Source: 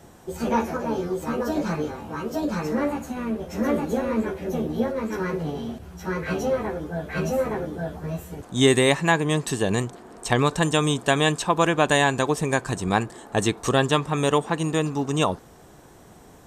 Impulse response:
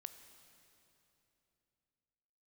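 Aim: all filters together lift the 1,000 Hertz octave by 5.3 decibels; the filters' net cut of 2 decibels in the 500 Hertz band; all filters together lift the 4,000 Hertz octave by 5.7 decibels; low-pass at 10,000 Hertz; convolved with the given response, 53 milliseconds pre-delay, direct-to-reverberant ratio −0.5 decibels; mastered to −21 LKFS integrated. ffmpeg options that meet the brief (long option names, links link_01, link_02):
-filter_complex "[0:a]lowpass=10000,equalizer=frequency=500:width_type=o:gain=-4.5,equalizer=frequency=1000:width_type=o:gain=7.5,equalizer=frequency=4000:width_type=o:gain=6.5,asplit=2[link_01][link_02];[1:a]atrim=start_sample=2205,adelay=53[link_03];[link_02][link_03]afir=irnorm=-1:irlink=0,volume=6dB[link_04];[link_01][link_04]amix=inputs=2:normalize=0,volume=-2dB"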